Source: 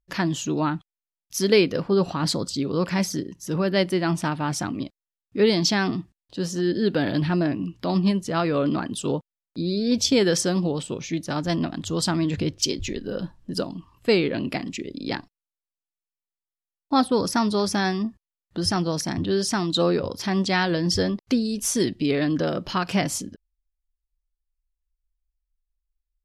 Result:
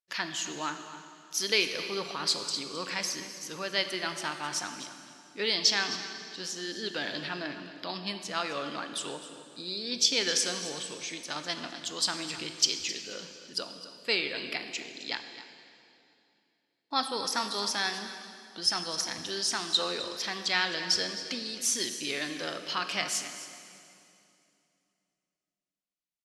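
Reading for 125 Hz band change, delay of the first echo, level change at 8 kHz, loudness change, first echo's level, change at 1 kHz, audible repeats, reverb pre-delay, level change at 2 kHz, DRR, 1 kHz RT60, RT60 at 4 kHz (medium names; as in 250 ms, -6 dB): -22.0 dB, 262 ms, -1.0 dB, -6.5 dB, -14.5 dB, -7.0 dB, 1, 11 ms, -2.0 dB, 6.5 dB, 2.6 s, 2.5 s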